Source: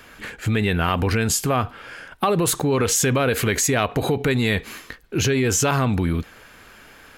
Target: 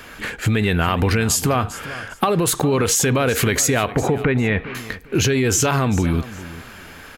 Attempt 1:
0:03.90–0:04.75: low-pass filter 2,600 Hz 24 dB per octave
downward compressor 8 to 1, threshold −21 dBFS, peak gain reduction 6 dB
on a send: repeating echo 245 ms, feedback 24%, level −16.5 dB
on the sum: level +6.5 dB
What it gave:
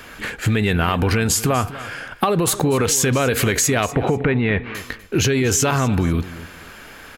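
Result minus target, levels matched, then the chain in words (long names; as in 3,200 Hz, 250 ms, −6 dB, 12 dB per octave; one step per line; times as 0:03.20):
echo 155 ms early
0:03.90–0:04.75: low-pass filter 2,600 Hz 24 dB per octave
downward compressor 8 to 1, threshold −21 dBFS, peak gain reduction 6 dB
on a send: repeating echo 400 ms, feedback 24%, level −16.5 dB
on the sum: level +6.5 dB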